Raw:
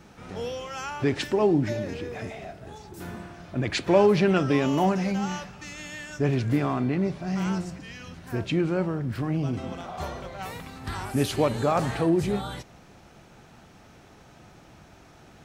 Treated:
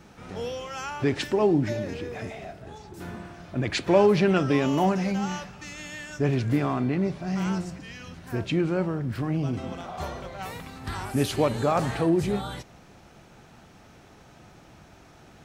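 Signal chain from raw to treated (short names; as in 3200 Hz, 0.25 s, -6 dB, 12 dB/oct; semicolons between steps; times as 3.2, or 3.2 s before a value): 2.62–3.25 high shelf 9400 Hz -8 dB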